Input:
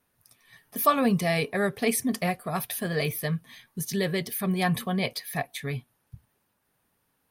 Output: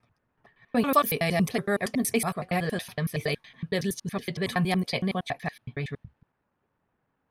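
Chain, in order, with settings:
slices reordered back to front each 93 ms, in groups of 4
low-pass that shuts in the quiet parts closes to 1,700 Hz, open at −22 dBFS

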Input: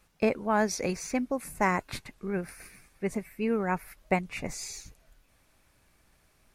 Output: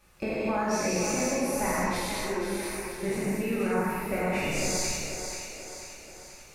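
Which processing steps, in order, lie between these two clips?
peak hold with a decay on every bin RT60 0.51 s
downward compressor, threshold −33 dBFS, peak gain reduction 13.5 dB
0:01.91–0:02.59: phaser with its sweep stopped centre 380 Hz, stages 4
echo with a time of its own for lows and highs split 310 Hz, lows 232 ms, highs 487 ms, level −7 dB
reverb whose tail is shaped and stops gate 290 ms flat, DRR −8 dB

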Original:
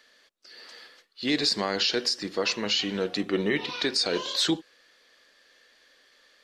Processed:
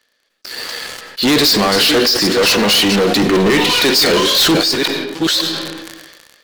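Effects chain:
delay that plays each chunk backwards 542 ms, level −11 dB
0:01.76–0:02.18: low-pass filter 4,400 Hz
leveller curve on the samples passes 5
on a send at −18.5 dB: convolution reverb RT60 1.1 s, pre-delay 50 ms
on the sum: level that may fall only so fast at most 35 dB per second
level +4 dB

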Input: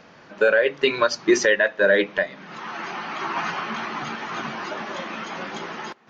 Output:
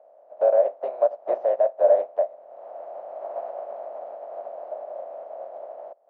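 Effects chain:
compressing power law on the bin magnitudes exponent 0.36
flat-topped band-pass 620 Hz, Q 4.1
level +8.5 dB

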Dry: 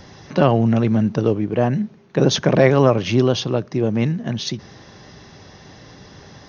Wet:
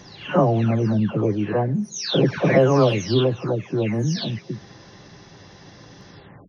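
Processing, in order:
every frequency bin delayed by itself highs early, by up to 471 ms
level −1 dB

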